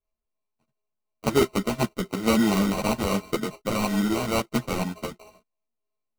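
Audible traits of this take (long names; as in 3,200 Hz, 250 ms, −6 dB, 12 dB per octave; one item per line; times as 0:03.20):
a buzz of ramps at a fixed pitch in blocks of 16 samples
phaser sweep stages 8, 0.97 Hz, lowest notch 550–1,900 Hz
aliases and images of a low sample rate 1,700 Hz, jitter 0%
a shimmering, thickened sound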